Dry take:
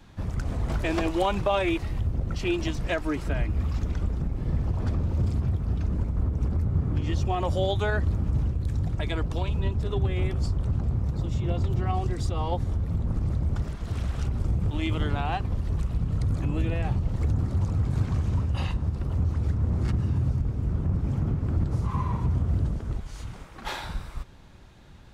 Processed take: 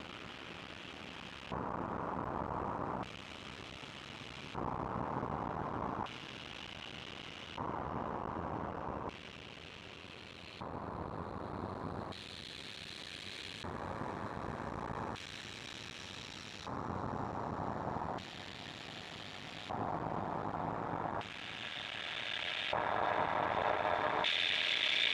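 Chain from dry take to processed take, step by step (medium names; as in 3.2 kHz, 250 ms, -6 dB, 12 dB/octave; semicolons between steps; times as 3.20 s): high-pass 140 Hz 6 dB/octave; peak limiter -23.5 dBFS, peak gain reduction 10 dB; Paulstretch 30×, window 0.25 s, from 8.22 s; half-wave rectifier; LFO band-pass square 0.33 Hz 1–3 kHz; trim +16.5 dB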